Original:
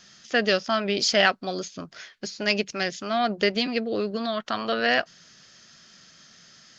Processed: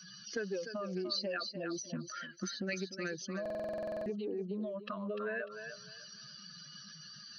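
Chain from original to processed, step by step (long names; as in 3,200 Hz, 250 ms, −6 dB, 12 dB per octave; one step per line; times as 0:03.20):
expanding power law on the bin magnitudes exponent 2.7
high-pass filter 130 Hz 12 dB per octave
notch filter 760 Hz, Q 16
downward compressor 4 to 1, threshold −37 dBFS, peak gain reduction 16.5 dB
dynamic equaliser 880 Hz, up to −6 dB, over −51 dBFS, Q 1.1
feedback echo with a high-pass in the loop 274 ms, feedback 31%, high-pass 610 Hz, level −6 dB
wrong playback speed 48 kHz file played as 44.1 kHz
buffer that repeats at 0:03.41, samples 2,048, times 13
highs frequency-modulated by the lows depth 0.11 ms
level +1 dB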